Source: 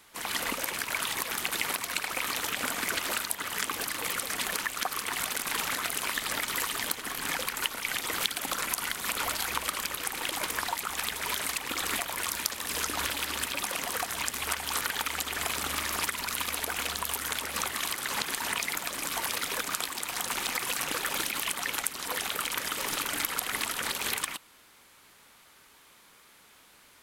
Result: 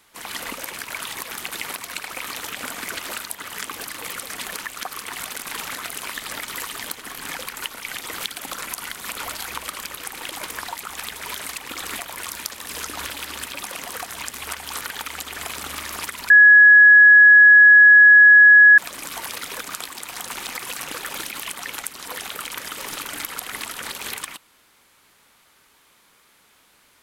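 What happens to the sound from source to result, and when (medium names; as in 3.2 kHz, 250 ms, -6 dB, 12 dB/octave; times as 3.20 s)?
16.30–18.78 s: bleep 1.68 kHz -6 dBFS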